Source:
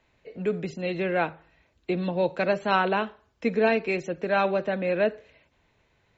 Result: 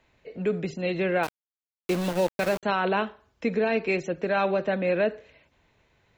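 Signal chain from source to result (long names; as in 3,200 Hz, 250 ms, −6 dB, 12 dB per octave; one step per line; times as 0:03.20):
0:01.23–0:02.63: centre clipping without the shift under −30 dBFS
brickwall limiter −17 dBFS, peak gain reduction 7.5 dB
level +1.5 dB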